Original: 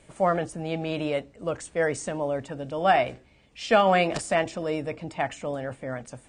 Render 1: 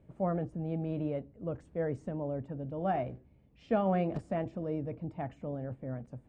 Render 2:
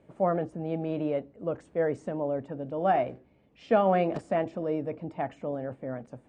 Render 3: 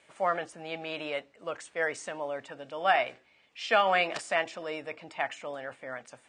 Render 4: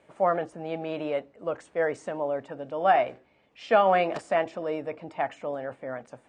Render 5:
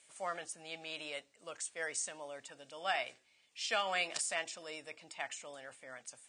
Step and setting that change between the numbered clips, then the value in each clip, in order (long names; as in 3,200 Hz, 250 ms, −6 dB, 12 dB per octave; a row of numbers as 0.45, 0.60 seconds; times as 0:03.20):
resonant band-pass, frequency: 110, 290, 2,100, 780, 7,900 Hertz